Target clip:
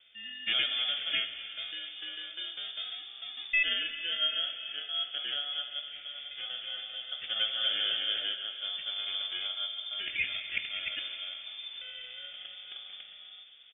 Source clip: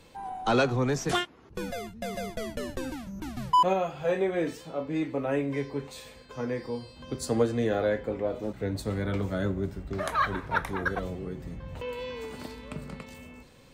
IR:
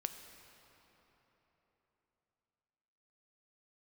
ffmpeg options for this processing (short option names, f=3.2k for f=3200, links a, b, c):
-filter_complex "[0:a]aecho=1:1:2.8:0.44,acrusher=samples=17:mix=1:aa=0.000001,asplit=3[a][b][c];[a]afade=t=out:st=6.04:d=0.02[d];[b]aecho=1:1:240|396|497.4|563.3|606.2:0.631|0.398|0.251|0.158|0.1,afade=t=in:st=6.04:d=0.02,afade=t=out:st=8.33:d=0.02[e];[c]afade=t=in:st=8.33:d=0.02[f];[d][e][f]amix=inputs=3:normalize=0[g];[1:a]atrim=start_sample=2205[h];[g][h]afir=irnorm=-1:irlink=0,lowpass=f=3.1k:t=q:w=0.5098,lowpass=f=3.1k:t=q:w=0.6013,lowpass=f=3.1k:t=q:w=0.9,lowpass=f=3.1k:t=q:w=2.563,afreqshift=-3600,volume=-5dB"